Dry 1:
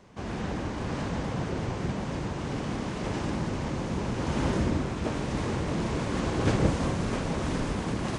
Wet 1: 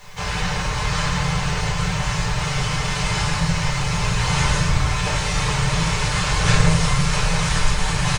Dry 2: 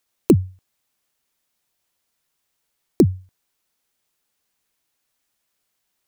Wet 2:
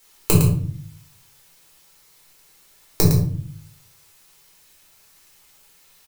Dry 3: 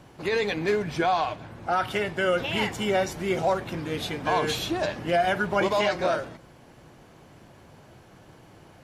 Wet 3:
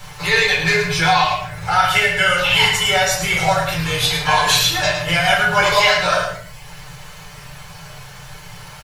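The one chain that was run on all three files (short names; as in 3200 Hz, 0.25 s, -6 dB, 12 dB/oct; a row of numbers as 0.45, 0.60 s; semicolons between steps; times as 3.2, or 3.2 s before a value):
reverb removal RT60 0.65 s; passive tone stack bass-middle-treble 10-0-10; comb 6.7 ms, depth 57%; in parallel at +1.5 dB: compressor, threshold -45 dBFS; on the sum: requantised 12-bit, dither triangular; on a send: echo 0.109 s -7.5 dB; on the sum: shoebox room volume 570 m³, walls furnished, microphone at 4.2 m; normalise peaks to -2 dBFS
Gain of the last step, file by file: +9.5, +7.5, +10.5 dB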